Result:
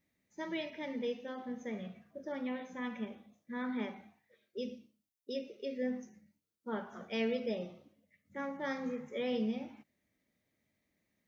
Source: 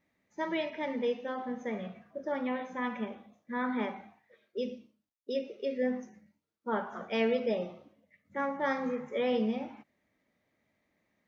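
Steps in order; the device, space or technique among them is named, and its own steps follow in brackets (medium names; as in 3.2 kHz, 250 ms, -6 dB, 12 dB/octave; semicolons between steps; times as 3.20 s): smiley-face EQ (bass shelf 190 Hz +4 dB; peaking EQ 980 Hz -6 dB 1.6 oct; treble shelf 5.1 kHz +8.5 dB); trim -4.5 dB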